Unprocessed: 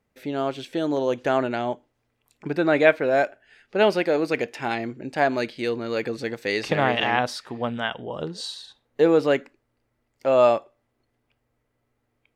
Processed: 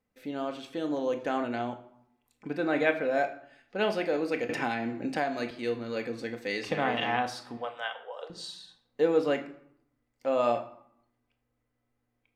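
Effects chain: 7.57–8.3 steep high-pass 460 Hz 48 dB/oct; on a send at -4 dB: reverb RT60 0.70 s, pre-delay 4 ms; 4.49–5.51 on the sum: three-band squash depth 100%; gain -8.5 dB

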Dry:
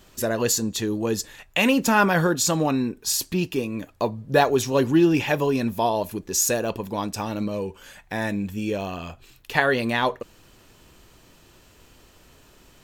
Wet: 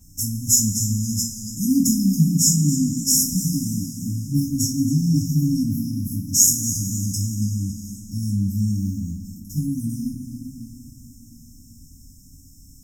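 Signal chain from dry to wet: FFT band-reject 300–5100 Hz; two-slope reverb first 0.32 s, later 4 s, from -19 dB, DRR -6.5 dB; warbling echo 0.279 s, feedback 44%, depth 78 cents, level -13.5 dB

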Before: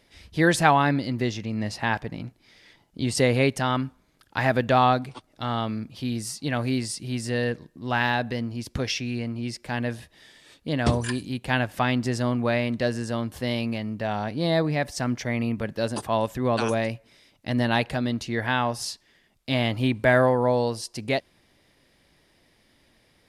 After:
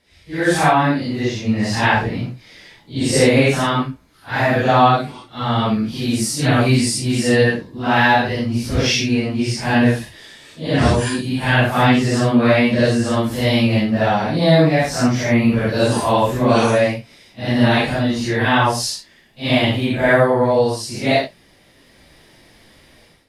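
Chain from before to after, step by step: phase scrambler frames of 0.2 s; AGC gain up to 14.5 dB; gain -1 dB

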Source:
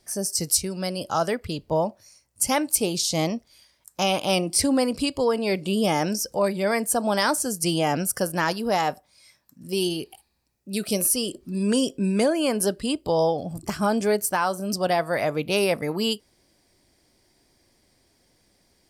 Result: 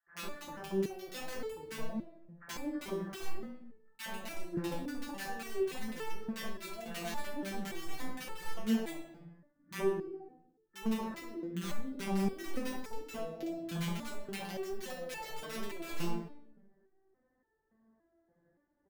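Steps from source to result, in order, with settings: CVSD 64 kbps; HPF 68 Hz 6 dB/oct; treble ducked by the level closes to 330 Hz, closed at -18 dBFS; Chebyshev low-pass 1800 Hz, order 6; compressor 8:1, threshold -28 dBFS, peak gain reduction 8.5 dB; wrapped overs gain 25 dB; bands offset in time highs, lows 70 ms, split 1200 Hz; shoebox room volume 240 m³, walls mixed, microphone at 0.94 m; stepped resonator 3.5 Hz 170–440 Hz; gain +4 dB

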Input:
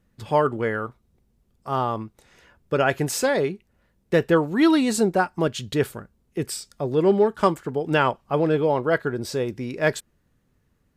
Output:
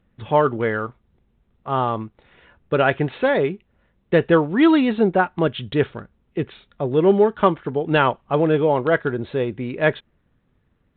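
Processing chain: gain +3 dB; G.726 40 kbps 8000 Hz

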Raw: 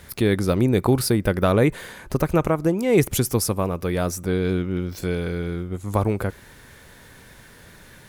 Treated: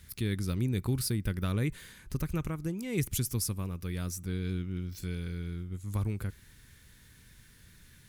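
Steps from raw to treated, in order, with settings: passive tone stack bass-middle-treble 6-0-2; gain +6.5 dB

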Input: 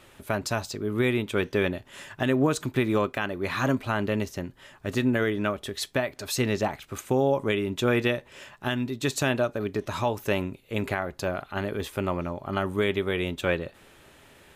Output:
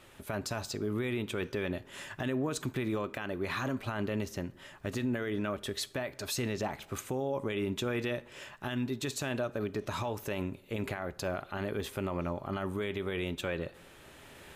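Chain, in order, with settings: recorder AGC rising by 6.3 dB/s; limiter -21 dBFS, peak gain reduction 7.5 dB; on a send: reverb RT60 0.90 s, pre-delay 38 ms, DRR 20 dB; on the sum: gain -3.5 dB

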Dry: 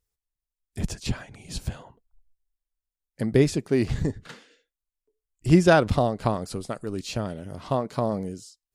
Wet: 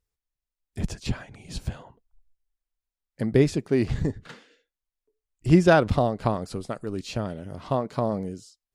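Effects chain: high shelf 5600 Hz -7 dB

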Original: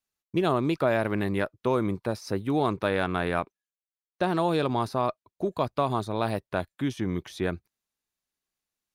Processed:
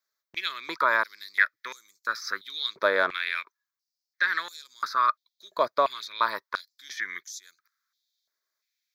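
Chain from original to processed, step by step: fixed phaser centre 2800 Hz, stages 6; stepped high-pass 2.9 Hz 680–6900 Hz; gain +6.5 dB

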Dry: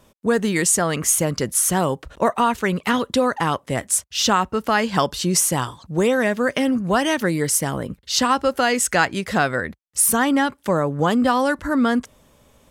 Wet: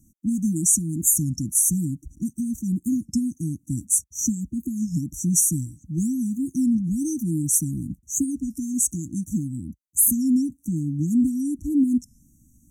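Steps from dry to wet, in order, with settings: brick-wall FIR band-stop 330–5700 Hz; record warp 33 1/3 rpm, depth 160 cents

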